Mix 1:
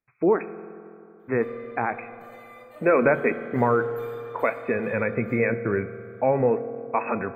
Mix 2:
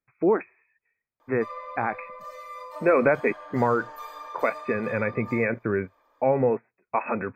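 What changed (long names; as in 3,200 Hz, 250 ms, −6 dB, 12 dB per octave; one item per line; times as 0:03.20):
background: remove phaser with its sweep stopped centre 2,300 Hz, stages 4
reverb: off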